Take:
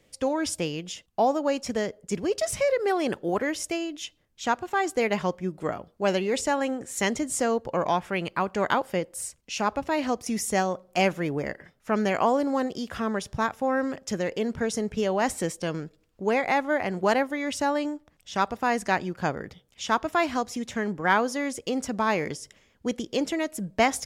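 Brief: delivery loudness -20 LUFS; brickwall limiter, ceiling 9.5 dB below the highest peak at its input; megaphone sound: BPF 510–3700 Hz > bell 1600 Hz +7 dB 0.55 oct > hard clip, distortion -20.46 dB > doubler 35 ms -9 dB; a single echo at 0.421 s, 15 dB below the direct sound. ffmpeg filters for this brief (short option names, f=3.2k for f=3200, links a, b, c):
-filter_complex "[0:a]alimiter=limit=-17dB:level=0:latency=1,highpass=510,lowpass=3.7k,equalizer=f=1.6k:t=o:w=0.55:g=7,aecho=1:1:421:0.178,asoftclip=type=hard:threshold=-19dB,asplit=2[a][b];[b]adelay=35,volume=-9dB[c];[a][c]amix=inputs=2:normalize=0,volume=10.5dB"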